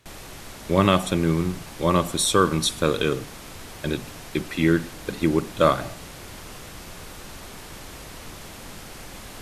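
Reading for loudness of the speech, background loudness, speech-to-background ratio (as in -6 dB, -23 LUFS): -23.0 LUFS, -39.5 LUFS, 16.5 dB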